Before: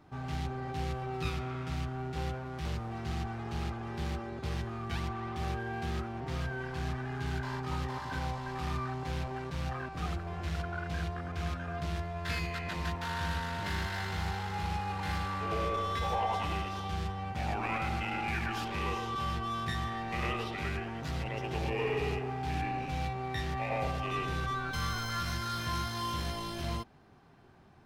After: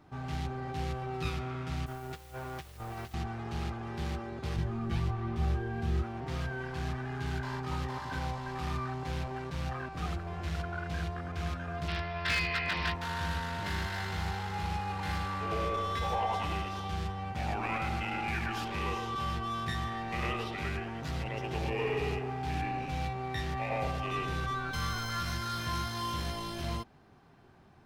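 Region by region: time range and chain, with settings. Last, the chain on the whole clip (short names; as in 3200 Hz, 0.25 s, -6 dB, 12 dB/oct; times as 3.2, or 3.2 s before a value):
1.86–3.14 bell 190 Hz -10.5 dB 1.1 oct + negative-ratio compressor -42 dBFS, ratio -0.5 + requantised 10-bit, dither triangular
4.56–6.03 low shelf 390 Hz +10 dB + detuned doubles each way 14 cents
11.88–12.94 elliptic low-pass 5400 Hz + bell 2700 Hz +9.5 dB 2.8 oct + overloaded stage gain 24.5 dB
whole clip: dry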